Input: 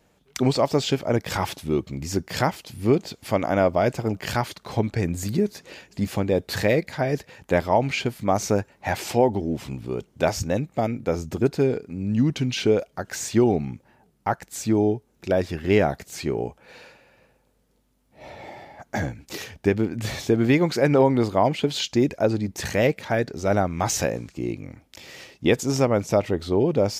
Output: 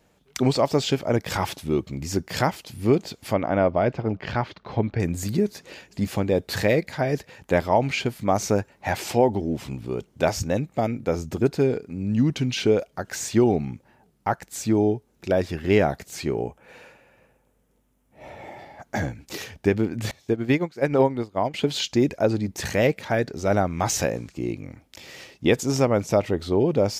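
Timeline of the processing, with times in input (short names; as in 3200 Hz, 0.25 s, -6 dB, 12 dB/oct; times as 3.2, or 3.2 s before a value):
3.33–5 air absorption 240 m
16.42–18.59 bell 4400 Hz -9.5 dB 0.6 oct
20.11–21.54 upward expander 2.5:1, over -30 dBFS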